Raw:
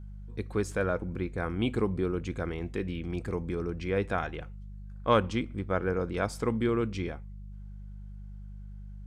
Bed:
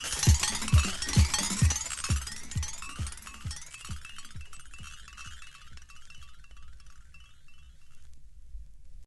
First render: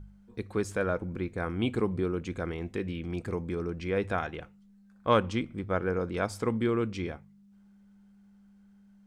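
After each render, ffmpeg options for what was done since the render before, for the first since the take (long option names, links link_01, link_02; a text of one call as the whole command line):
ffmpeg -i in.wav -af "bandreject=frequency=50:width_type=h:width=4,bandreject=frequency=100:width_type=h:width=4,bandreject=frequency=150:width_type=h:width=4" out.wav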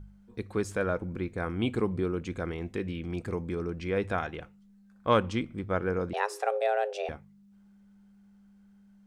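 ffmpeg -i in.wav -filter_complex "[0:a]asettb=1/sr,asplit=3[link_01][link_02][link_03];[link_01]atrim=end=6.134[link_04];[link_02]atrim=start=6.13:end=7.09,asetpts=PTS-STARTPTS,afade=type=in:duration=0.004:curve=qsin,afade=type=out:start_time=0.956:duration=0.004:curve=qsin,afreqshift=310[link_05];[link_03]atrim=start=7.086[link_06];[link_04][link_05]acrossfade=duration=0.004:curve1=hsin:curve2=qsin[link_07];[link_07][link_06]acrossfade=duration=0.004:curve1=qsin:curve2=hsin" out.wav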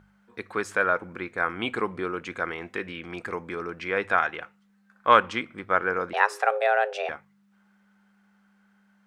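ffmpeg -i in.wav -af "highpass=frequency=380:poles=1,equalizer=frequency=1500:width_type=o:width=2.1:gain=12.5" out.wav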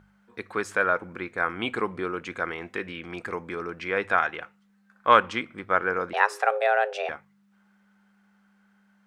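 ffmpeg -i in.wav -af anull out.wav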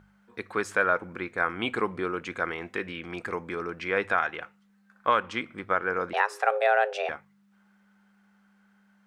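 ffmpeg -i in.wav -af "alimiter=limit=-10dB:level=0:latency=1:release=333" out.wav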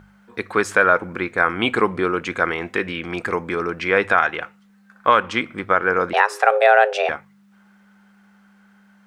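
ffmpeg -i in.wav -af "volume=9.5dB,alimiter=limit=-2dB:level=0:latency=1" out.wav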